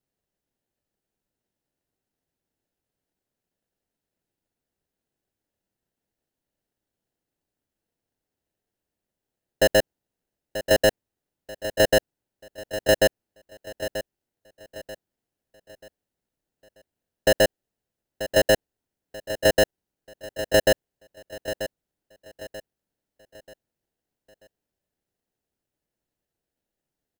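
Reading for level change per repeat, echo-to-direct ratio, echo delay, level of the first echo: -8.5 dB, -11.5 dB, 936 ms, -12.0 dB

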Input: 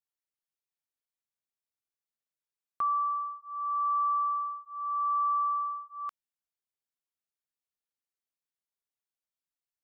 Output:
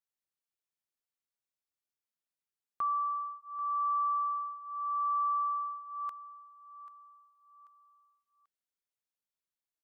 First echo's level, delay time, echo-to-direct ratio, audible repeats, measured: -16.0 dB, 788 ms, -15.5 dB, 3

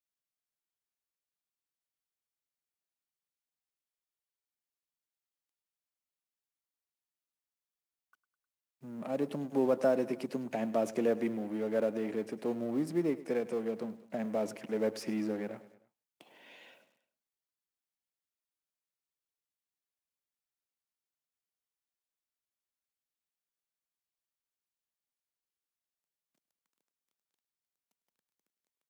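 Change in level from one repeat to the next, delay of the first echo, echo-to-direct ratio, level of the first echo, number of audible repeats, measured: -4.5 dB, 103 ms, -16.0 dB, -17.5 dB, 3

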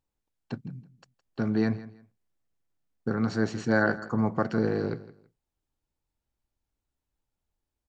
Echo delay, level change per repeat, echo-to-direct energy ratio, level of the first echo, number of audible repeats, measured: 164 ms, -12.5 dB, -17.0 dB, -17.0 dB, 2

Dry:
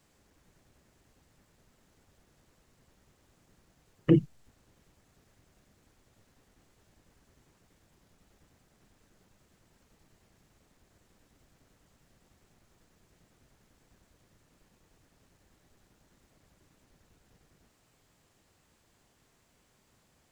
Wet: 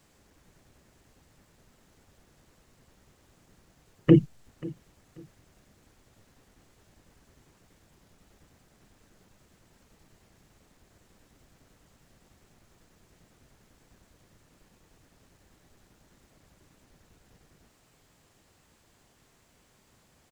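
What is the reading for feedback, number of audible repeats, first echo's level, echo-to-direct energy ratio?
26%, 2, -20.5 dB, -20.0 dB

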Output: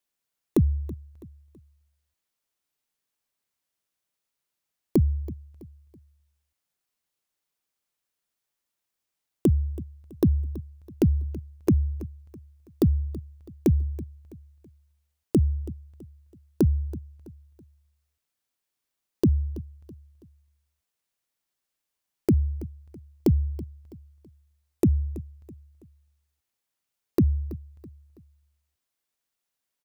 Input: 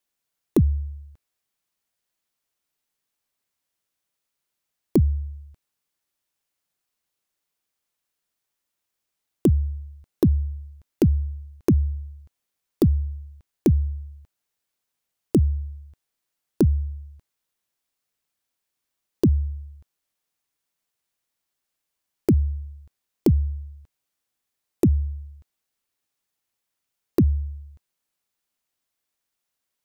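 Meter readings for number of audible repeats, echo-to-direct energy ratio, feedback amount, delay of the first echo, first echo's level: 3, -17.0 dB, 39%, 328 ms, -17.5 dB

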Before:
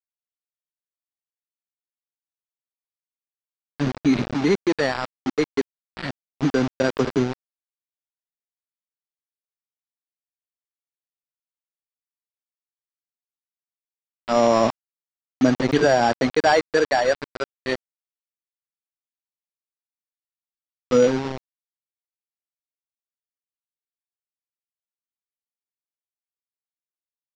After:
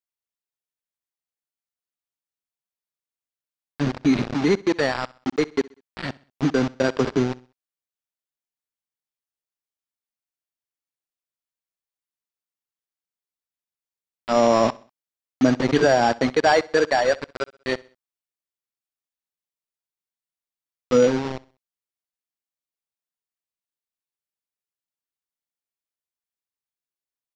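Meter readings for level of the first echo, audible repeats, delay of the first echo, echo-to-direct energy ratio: -22.0 dB, 2, 64 ms, -21.5 dB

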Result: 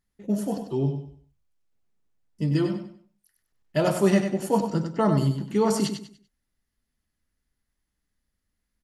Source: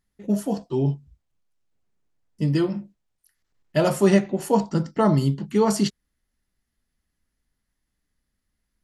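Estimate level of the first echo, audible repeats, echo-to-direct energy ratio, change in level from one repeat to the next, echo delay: -7.5 dB, 3, -7.0 dB, -10.5 dB, 97 ms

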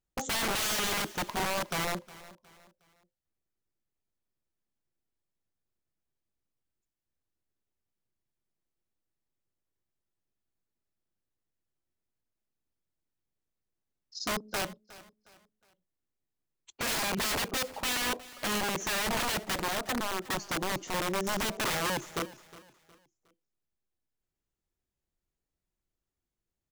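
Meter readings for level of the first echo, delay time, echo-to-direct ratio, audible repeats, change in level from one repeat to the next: -19.0 dB, 362 ms, -18.5 dB, 2, -9.0 dB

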